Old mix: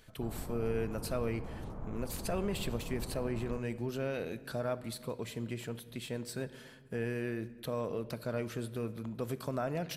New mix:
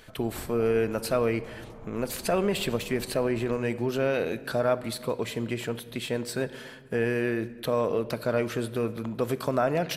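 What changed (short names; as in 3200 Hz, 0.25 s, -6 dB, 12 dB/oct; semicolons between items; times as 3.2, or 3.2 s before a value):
speech +11.0 dB; master: add tone controls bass -6 dB, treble -4 dB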